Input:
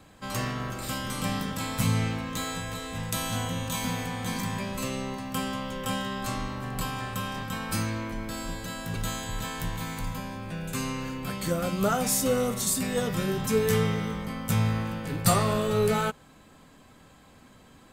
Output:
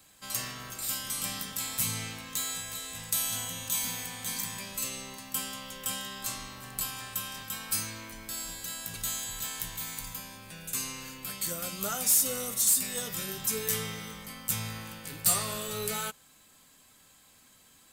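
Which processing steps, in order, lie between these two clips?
pre-emphasis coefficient 0.9; soft clip -23 dBFS, distortion -13 dB; gain +6 dB

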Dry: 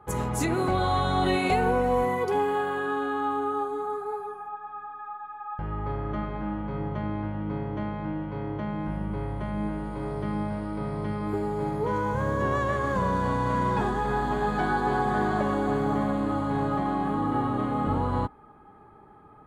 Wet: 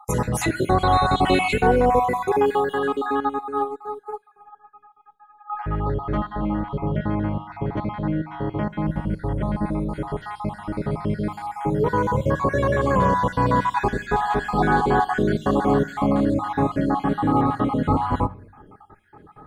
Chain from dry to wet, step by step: random spectral dropouts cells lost 44%; reverb RT60 0.50 s, pre-delay 7 ms, DRR 16 dB; 3.2–5.5 upward expander 2.5:1, over -39 dBFS; gain +7.5 dB

